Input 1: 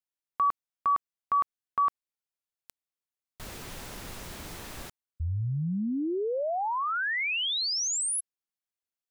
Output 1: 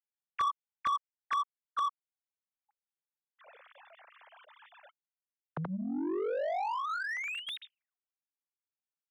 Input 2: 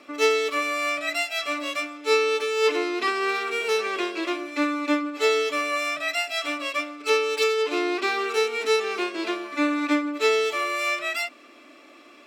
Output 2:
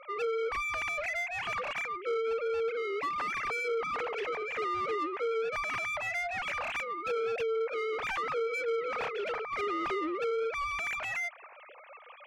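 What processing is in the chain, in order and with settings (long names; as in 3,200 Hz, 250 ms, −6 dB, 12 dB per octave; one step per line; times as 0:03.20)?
three sine waves on the formant tracks
downward compressor 3 to 1, threshold −26 dBFS
mid-hump overdrive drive 22 dB, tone 1,800 Hz, clips at −16 dBFS
speech leveller within 4 dB 2 s
level −8.5 dB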